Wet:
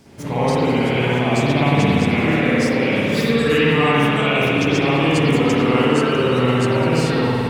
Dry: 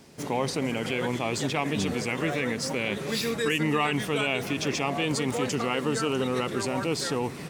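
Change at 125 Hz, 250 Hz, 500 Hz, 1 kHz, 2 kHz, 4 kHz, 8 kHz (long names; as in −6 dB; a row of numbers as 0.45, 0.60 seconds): +14.0, +12.0, +10.5, +10.0, +9.5, +7.5, 0.0 decibels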